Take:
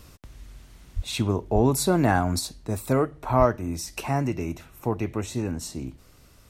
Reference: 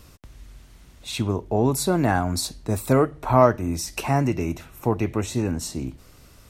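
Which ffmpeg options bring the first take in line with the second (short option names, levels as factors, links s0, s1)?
-filter_complex "[0:a]asplit=3[s0][s1][s2];[s0]afade=t=out:st=0.95:d=0.02[s3];[s1]highpass=f=140:w=0.5412,highpass=f=140:w=1.3066,afade=t=in:st=0.95:d=0.02,afade=t=out:st=1.07:d=0.02[s4];[s2]afade=t=in:st=1.07:d=0.02[s5];[s3][s4][s5]amix=inputs=3:normalize=0,asplit=3[s6][s7][s8];[s6]afade=t=out:st=1.54:d=0.02[s9];[s7]highpass=f=140:w=0.5412,highpass=f=140:w=1.3066,afade=t=in:st=1.54:d=0.02,afade=t=out:st=1.66:d=0.02[s10];[s8]afade=t=in:st=1.66:d=0.02[s11];[s9][s10][s11]amix=inputs=3:normalize=0,asplit=3[s12][s13][s14];[s12]afade=t=out:st=3.38:d=0.02[s15];[s13]highpass=f=140:w=0.5412,highpass=f=140:w=1.3066,afade=t=in:st=3.38:d=0.02,afade=t=out:st=3.5:d=0.02[s16];[s14]afade=t=in:st=3.5:d=0.02[s17];[s15][s16][s17]amix=inputs=3:normalize=0,asetnsamples=n=441:p=0,asendcmd='2.39 volume volume 4dB',volume=1"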